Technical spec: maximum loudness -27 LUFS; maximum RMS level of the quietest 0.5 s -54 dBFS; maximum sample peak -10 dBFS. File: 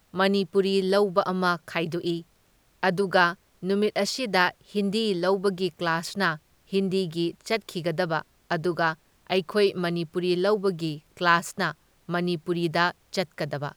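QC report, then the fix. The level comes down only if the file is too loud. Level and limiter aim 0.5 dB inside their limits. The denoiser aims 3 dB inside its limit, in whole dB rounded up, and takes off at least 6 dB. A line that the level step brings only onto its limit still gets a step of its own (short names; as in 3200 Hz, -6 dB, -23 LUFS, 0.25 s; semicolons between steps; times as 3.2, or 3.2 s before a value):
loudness -26.0 LUFS: fail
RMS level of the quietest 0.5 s -63 dBFS: OK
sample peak -6.0 dBFS: fail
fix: gain -1.5 dB; limiter -10.5 dBFS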